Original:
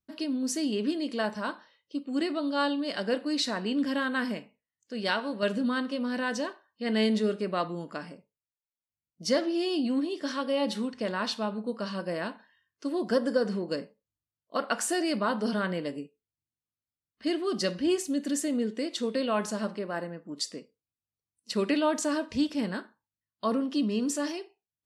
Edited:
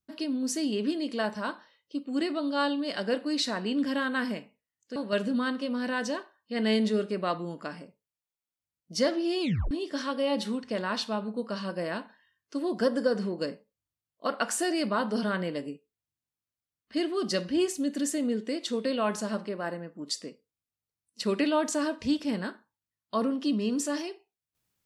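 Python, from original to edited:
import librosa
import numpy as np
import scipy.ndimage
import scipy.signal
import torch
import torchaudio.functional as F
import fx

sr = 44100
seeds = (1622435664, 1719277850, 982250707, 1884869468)

y = fx.edit(x, sr, fx.cut(start_s=4.96, length_s=0.3),
    fx.tape_stop(start_s=9.71, length_s=0.3), tone=tone)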